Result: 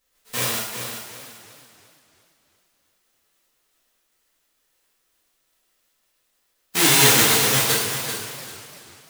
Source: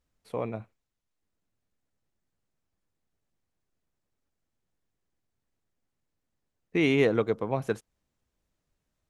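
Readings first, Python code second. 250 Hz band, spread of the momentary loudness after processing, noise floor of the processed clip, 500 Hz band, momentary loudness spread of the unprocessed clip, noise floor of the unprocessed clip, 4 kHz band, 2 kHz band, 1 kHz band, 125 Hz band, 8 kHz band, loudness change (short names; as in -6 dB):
+1.0 dB, 22 LU, -70 dBFS, 0.0 dB, 14 LU, -83 dBFS, +22.5 dB, +13.0 dB, +13.0 dB, +6.5 dB, n/a, +10.0 dB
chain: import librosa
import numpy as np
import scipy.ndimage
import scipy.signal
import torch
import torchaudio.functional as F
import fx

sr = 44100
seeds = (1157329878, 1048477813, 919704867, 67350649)

p1 = fx.envelope_flatten(x, sr, power=0.1)
p2 = p1 + fx.echo_feedback(p1, sr, ms=390, feedback_pct=26, wet_db=-8.5, dry=0)
p3 = fx.rev_gated(p2, sr, seeds[0], gate_ms=260, shape='falling', drr_db=-8.0)
y = fx.echo_warbled(p3, sr, ms=342, feedback_pct=47, rate_hz=2.8, cents=172, wet_db=-13)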